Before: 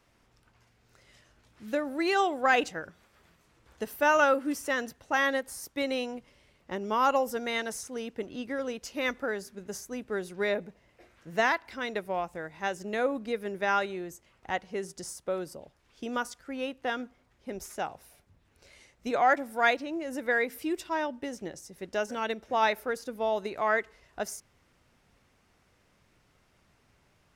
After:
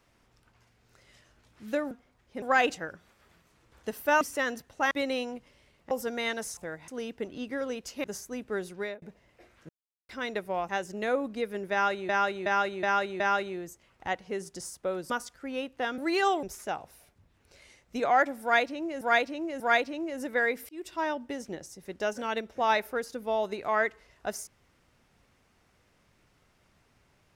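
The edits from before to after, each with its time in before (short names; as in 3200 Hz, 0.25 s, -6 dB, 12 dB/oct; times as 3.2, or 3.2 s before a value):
1.91–2.36 swap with 17.03–17.54
4.15–4.52 cut
5.22–5.72 cut
6.72–7.2 cut
9.02–9.64 cut
10.29–10.62 fade out
11.29–11.69 mute
12.29–12.6 move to 7.86
13.63–14 loop, 5 plays
15.53–16.15 cut
19.53–20.12 loop, 3 plays
20.62–20.9 fade in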